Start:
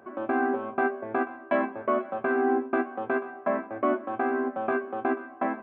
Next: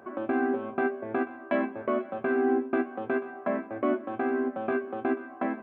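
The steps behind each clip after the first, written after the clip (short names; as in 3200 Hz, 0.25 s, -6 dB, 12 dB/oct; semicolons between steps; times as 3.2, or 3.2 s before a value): dynamic EQ 1000 Hz, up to -8 dB, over -40 dBFS, Q 0.78; gain +2 dB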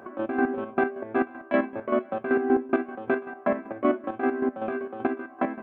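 chopper 5.2 Hz, depth 60%, duty 35%; gain +5 dB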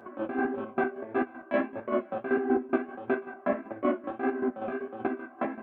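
flange 1.6 Hz, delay 7.8 ms, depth 9.5 ms, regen -29%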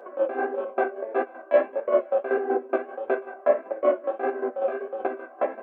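resonant high-pass 510 Hz, resonance Q 4.9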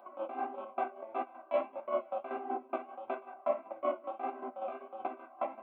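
fixed phaser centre 1700 Hz, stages 6; gain -4.5 dB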